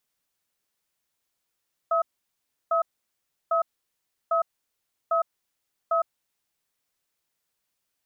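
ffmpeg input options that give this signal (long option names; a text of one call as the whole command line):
ffmpeg -f lavfi -i "aevalsrc='0.075*(sin(2*PI*666*t)+sin(2*PI*1280*t))*clip(min(mod(t,0.8),0.11-mod(t,0.8))/0.005,0,1)':duration=4.4:sample_rate=44100" out.wav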